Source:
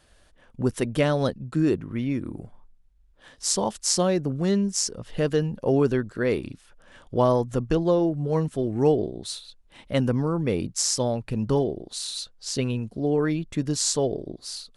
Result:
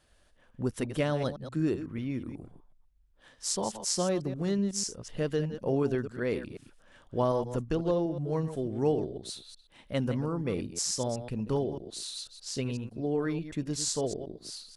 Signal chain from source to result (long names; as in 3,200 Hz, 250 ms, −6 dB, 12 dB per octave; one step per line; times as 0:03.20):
delay that plays each chunk backwards 124 ms, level −10.5 dB
level −7 dB